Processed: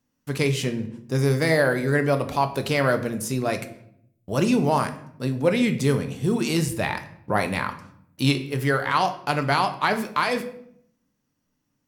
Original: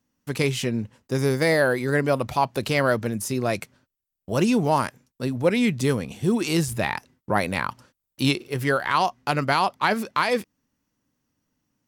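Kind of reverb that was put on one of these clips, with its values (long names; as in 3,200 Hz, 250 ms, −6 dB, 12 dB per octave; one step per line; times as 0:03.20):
rectangular room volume 130 cubic metres, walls mixed, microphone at 0.39 metres
level −1 dB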